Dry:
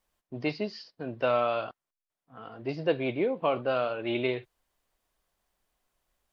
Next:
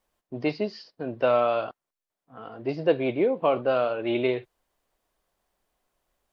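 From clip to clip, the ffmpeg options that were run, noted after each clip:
-af "equalizer=f=470:w=0.48:g=5"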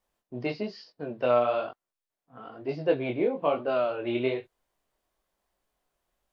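-af "flanger=delay=19.5:depth=5.4:speed=1.1"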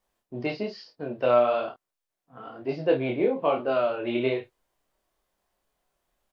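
-filter_complex "[0:a]asplit=2[a][b];[b]adelay=30,volume=-7dB[c];[a][c]amix=inputs=2:normalize=0,volume=1.5dB"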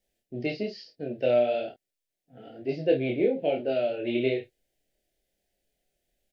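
-af "asuperstop=centerf=1100:order=4:qfactor=0.93"

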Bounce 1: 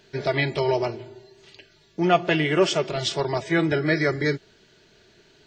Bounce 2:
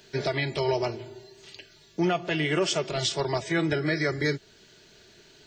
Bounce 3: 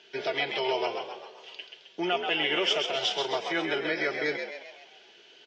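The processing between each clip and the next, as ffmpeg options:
-filter_complex "[0:a]highshelf=f=5k:g=9.5,acrossover=split=100[a][b];[b]alimiter=limit=-16dB:level=0:latency=1:release=330[c];[a][c]amix=inputs=2:normalize=0"
-filter_complex "[0:a]highpass=460,equalizer=f=570:t=q:w=4:g=-4,equalizer=f=1.1k:t=q:w=4:g=-5,equalizer=f=1.8k:t=q:w=4:g=-4,equalizer=f=3k:t=q:w=4:g=8,equalizer=f=4.2k:t=q:w=4:g=-10,lowpass=f=4.9k:w=0.5412,lowpass=f=4.9k:w=1.3066,asplit=2[a][b];[b]asplit=6[c][d][e][f][g][h];[c]adelay=132,afreqshift=64,volume=-6dB[i];[d]adelay=264,afreqshift=128,volume=-12dB[j];[e]adelay=396,afreqshift=192,volume=-18dB[k];[f]adelay=528,afreqshift=256,volume=-24.1dB[l];[g]adelay=660,afreqshift=320,volume=-30.1dB[m];[h]adelay=792,afreqshift=384,volume=-36.1dB[n];[i][j][k][l][m][n]amix=inputs=6:normalize=0[o];[a][o]amix=inputs=2:normalize=0,volume=1dB"

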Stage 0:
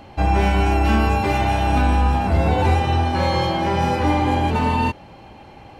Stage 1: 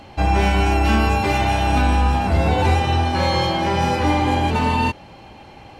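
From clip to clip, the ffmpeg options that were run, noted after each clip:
-af "equalizer=f=5.6k:w=0.4:g=4.5"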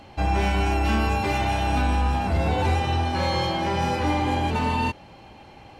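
-af "asoftclip=type=tanh:threshold=-7dB,volume=-4.5dB"

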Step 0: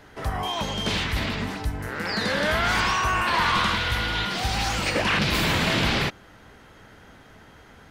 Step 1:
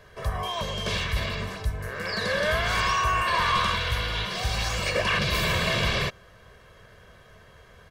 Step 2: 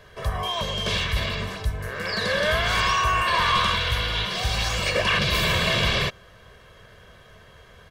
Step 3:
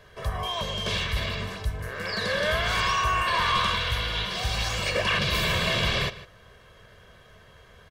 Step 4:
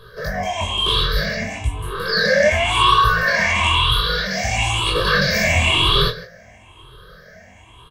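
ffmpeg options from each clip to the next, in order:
-af "aecho=1:1:1.8:0.76,volume=-4dB"
-af "equalizer=f=3.3k:w=2.5:g=3.5,volume=2dB"
-filter_complex "[0:a]asplit=2[a][b];[b]adelay=151.6,volume=-16dB,highshelf=f=4k:g=-3.41[c];[a][c]amix=inputs=2:normalize=0,volume=-3dB"
-filter_complex "[0:a]afftfilt=real='re*pow(10,21/40*sin(2*PI*(0.62*log(max(b,1)*sr/1024/100)/log(2)-(1)*(pts-256)/sr)))':imag='im*pow(10,21/40*sin(2*PI*(0.62*log(max(b,1)*sr/1024/100)/log(2)-(1)*(pts-256)/sr)))':win_size=1024:overlap=0.75,flanger=delay=17.5:depth=6:speed=0.63,asplit=2[a][b];[b]adelay=25,volume=-8dB[c];[a][c]amix=inputs=2:normalize=0,volume=6dB"

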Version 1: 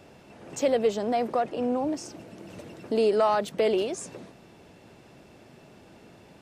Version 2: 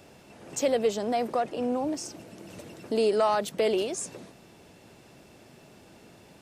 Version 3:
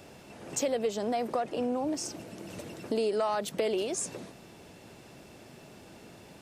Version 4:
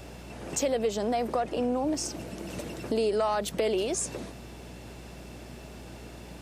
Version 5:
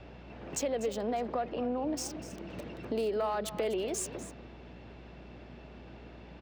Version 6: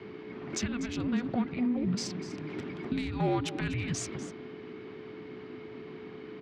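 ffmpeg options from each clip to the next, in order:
-af "highshelf=f=5k:g=8.5,volume=-1.5dB"
-af "acompressor=threshold=-30dB:ratio=3,volume=2dB"
-filter_complex "[0:a]asplit=2[a][b];[b]alimiter=level_in=5dB:limit=-24dB:level=0:latency=1:release=180,volume=-5dB,volume=-3dB[c];[a][c]amix=inputs=2:normalize=0,aeval=exprs='val(0)+0.00501*(sin(2*PI*60*n/s)+sin(2*PI*2*60*n/s)/2+sin(2*PI*3*60*n/s)/3+sin(2*PI*4*60*n/s)/4+sin(2*PI*5*60*n/s)/5)':c=same"
-filter_complex "[0:a]acrossover=split=420|1300|4100[a][b][c][d];[d]acrusher=bits=5:mix=0:aa=0.5[e];[a][b][c][e]amix=inputs=4:normalize=0,aecho=1:1:246:0.2,volume=-5dB"
-af "afreqshift=-490,highpass=160,lowpass=4.9k,volume=6dB"

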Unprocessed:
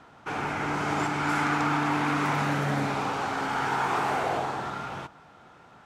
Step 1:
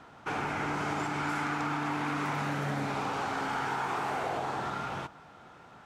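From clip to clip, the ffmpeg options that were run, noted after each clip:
-af "acompressor=threshold=-29dB:ratio=6"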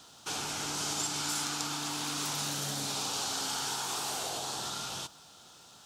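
-af "aexciter=amount=14.9:drive=3:freq=3.2k,volume=-7dB"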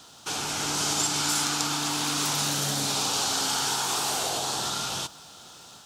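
-af "dynaudnorm=f=360:g=3:m=3dB,volume=4.5dB"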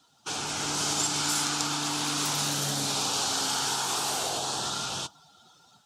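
-af "afftdn=nr=15:nf=-44,volume=-1.5dB"

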